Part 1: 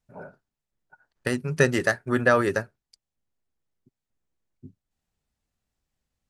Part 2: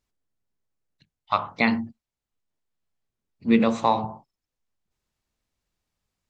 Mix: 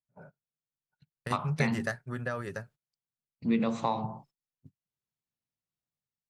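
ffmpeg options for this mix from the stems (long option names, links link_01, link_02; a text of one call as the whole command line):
ffmpeg -i stem1.wav -i stem2.wav -filter_complex "[0:a]equalizer=frequency=330:width=2.6:gain=-6,volume=-3dB[link_01];[1:a]highpass=100,dynaudnorm=framelen=110:gausssize=7:maxgain=8.5dB,volume=-4.5dB,asplit=2[link_02][link_03];[link_03]apad=whole_len=277572[link_04];[link_01][link_04]sidechaingate=range=-8dB:threshold=-50dB:ratio=16:detection=peak[link_05];[link_05][link_02]amix=inputs=2:normalize=0,agate=range=-20dB:threshold=-54dB:ratio=16:detection=peak,equalizer=frequency=140:width_type=o:width=0.75:gain=10,acompressor=threshold=-33dB:ratio=2" out.wav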